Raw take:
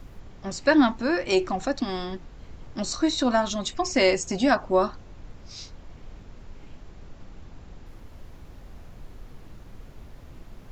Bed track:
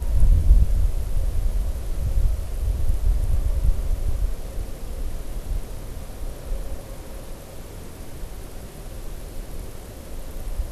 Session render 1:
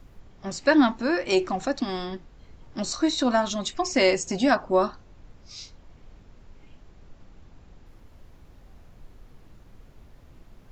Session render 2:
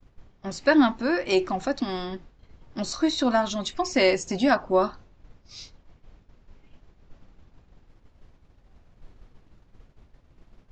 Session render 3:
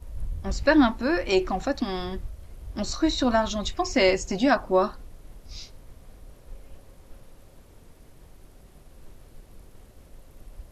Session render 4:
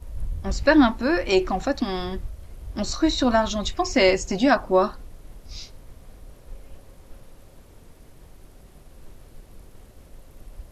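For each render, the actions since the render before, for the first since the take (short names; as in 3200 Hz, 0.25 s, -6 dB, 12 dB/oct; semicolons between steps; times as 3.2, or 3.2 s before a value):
noise print and reduce 6 dB
expander -42 dBFS; LPF 6400 Hz 12 dB/oct
add bed track -16 dB
gain +2.5 dB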